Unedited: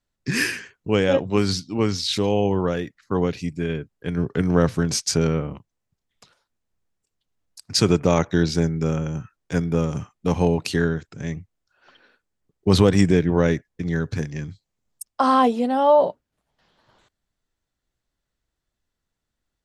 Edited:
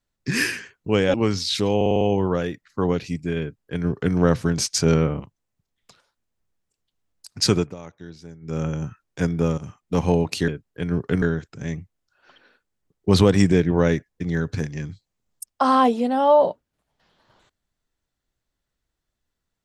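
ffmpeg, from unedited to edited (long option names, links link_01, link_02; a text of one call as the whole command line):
ffmpeg -i in.wav -filter_complex "[0:a]asplit=14[link_01][link_02][link_03][link_04][link_05][link_06][link_07][link_08][link_09][link_10][link_11][link_12][link_13][link_14];[link_01]atrim=end=1.142[link_15];[link_02]atrim=start=1.718:end=2.392[link_16];[link_03]atrim=start=2.338:end=2.392[link_17];[link_04]atrim=start=2.338:end=2.392[link_18];[link_05]atrim=start=2.338:end=2.392[link_19];[link_06]atrim=start=2.338:end=2.392[link_20];[link_07]atrim=start=2.338:end=5.192[link_21];[link_08]atrim=start=5.188:end=5.532,asetpts=PTS-STARTPTS,volume=3dB[link_22];[link_09]atrim=start=5.528:end=8.08,asetpts=PTS-STARTPTS,afade=type=out:start_time=2.302:duration=0.25:silence=0.0944061[link_23];[link_10]atrim=start=8.08:end=8.74,asetpts=PTS-STARTPTS,volume=-20.5dB[link_24];[link_11]atrim=start=8.74:end=9.91,asetpts=PTS-STARTPTS,afade=type=in:duration=0.25:silence=0.0944061,afade=type=out:start_time=1.166:duration=0.004:curve=hsin:silence=0.237137[link_25];[link_12]atrim=start=9.91:end=10.812,asetpts=PTS-STARTPTS,afade=type=in:duration=0.4:curve=qsin:silence=0.237137[link_26];[link_13]atrim=start=3.738:end=4.482[link_27];[link_14]atrim=start=10.808[link_28];[link_15][link_16]acrossfade=duration=0.004:curve1=hsin:curve2=hsin[link_29];[link_29][link_17]acrossfade=duration=0.004:curve1=hsin:curve2=hsin[link_30];[link_30][link_18]acrossfade=duration=0.004:curve1=hsin:curve2=hsin[link_31];[link_31][link_19]acrossfade=duration=0.004:curve1=hsin:curve2=hsin[link_32];[link_32][link_20]acrossfade=duration=0.004:curve1=hsin:curve2=hsin[link_33];[link_33][link_21]acrossfade=duration=0.004:curve1=hsin:curve2=hsin[link_34];[link_34][link_22]acrossfade=duration=0.004:curve1=hsin:curve2=hsin[link_35];[link_23][link_24][link_25][link_26]concat=n=4:v=0:a=1[link_36];[link_35][link_36]acrossfade=duration=0.004:curve1=hsin:curve2=hsin[link_37];[link_37][link_27]acrossfade=duration=0.004:curve1=hsin:curve2=hsin[link_38];[link_38][link_28]acrossfade=duration=0.004:curve1=hsin:curve2=hsin" out.wav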